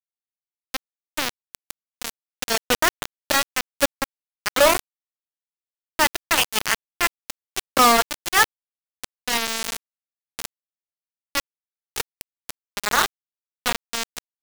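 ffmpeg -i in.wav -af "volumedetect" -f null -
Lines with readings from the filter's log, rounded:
mean_volume: -25.9 dB
max_volume: -9.0 dB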